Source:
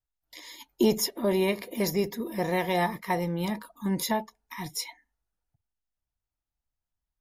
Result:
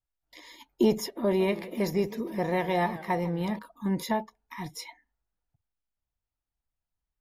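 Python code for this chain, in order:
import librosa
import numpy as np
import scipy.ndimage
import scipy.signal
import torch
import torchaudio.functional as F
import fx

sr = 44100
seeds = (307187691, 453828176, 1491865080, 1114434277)

y = fx.high_shelf(x, sr, hz=4100.0, db=-11.0)
y = fx.echo_warbled(y, sr, ms=155, feedback_pct=46, rate_hz=2.8, cents=180, wet_db=-17.0, at=(1.24, 3.59))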